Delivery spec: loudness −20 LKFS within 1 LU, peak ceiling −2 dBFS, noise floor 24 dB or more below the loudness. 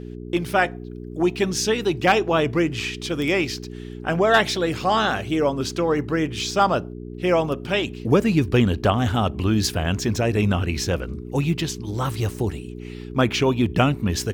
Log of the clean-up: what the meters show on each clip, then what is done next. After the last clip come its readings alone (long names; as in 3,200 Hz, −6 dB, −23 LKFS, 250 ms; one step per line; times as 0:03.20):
mains hum 60 Hz; hum harmonics up to 420 Hz; level of the hum −32 dBFS; integrated loudness −22.0 LKFS; sample peak −5.0 dBFS; target loudness −20.0 LKFS
→ hum removal 60 Hz, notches 7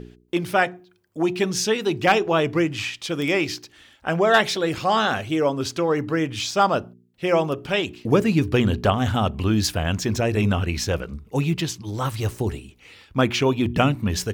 mains hum none found; integrated loudness −22.5 LKFS; sample peak −5.0 dBFS; target loudness −20.0 LKFS
→ level +2.5 dB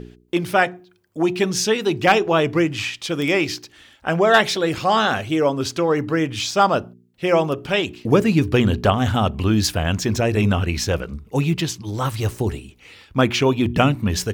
integrated loudness −20.0 LKFS; sample peak −2.5 dBFS; background noise floor −54 dBFS